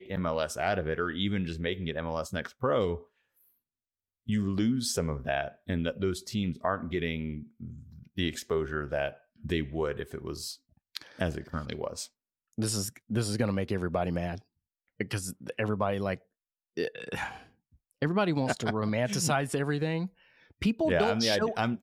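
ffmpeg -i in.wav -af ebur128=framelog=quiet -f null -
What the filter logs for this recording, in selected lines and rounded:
Integrated loudness:
  I:         -31.3 LUFS
  Threshold: -41.9 LUFS
Loudness range:
  LRA:         5.3 LU
  Threshold: -52.6 LUFS
  LRA low:   -35.0 LUFS
  LRA high:  -29.8 LUFS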